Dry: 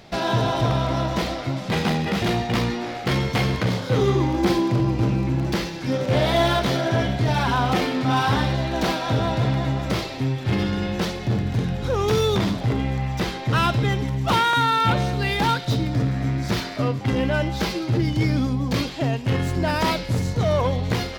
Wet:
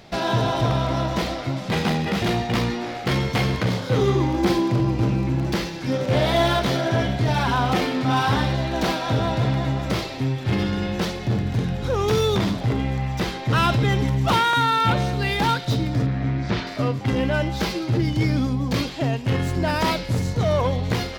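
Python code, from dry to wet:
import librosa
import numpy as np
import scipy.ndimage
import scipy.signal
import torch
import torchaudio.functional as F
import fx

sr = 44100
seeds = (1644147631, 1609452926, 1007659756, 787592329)

y = fx.env_flatten(x, sr, amount_pct=50, at=(13.5, 14.37))
y = fx.lowpass(y, sr, hz=3800.0, slope=12, at=(16.06, 16.67))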